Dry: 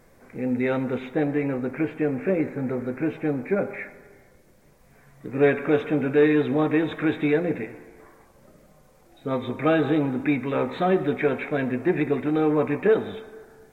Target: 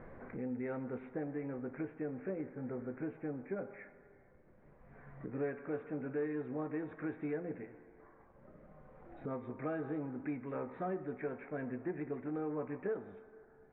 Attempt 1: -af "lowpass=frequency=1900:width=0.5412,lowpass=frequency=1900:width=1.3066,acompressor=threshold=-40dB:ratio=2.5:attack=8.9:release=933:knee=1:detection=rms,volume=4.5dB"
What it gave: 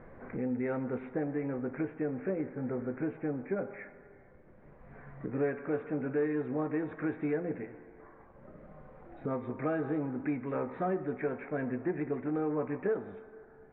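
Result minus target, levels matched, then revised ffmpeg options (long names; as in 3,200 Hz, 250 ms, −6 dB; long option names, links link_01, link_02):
downward compressor: peak gain reduction −6.5 dB
-af "lowpass=frequency=1900:width=0.5412,lowpass=frequency=1900:width=1.3066,acompressor=threshold=-50.5dB:ratio=2.5:attack=8.9:release=933:knee=1:detection=rms,volume=4.5dB"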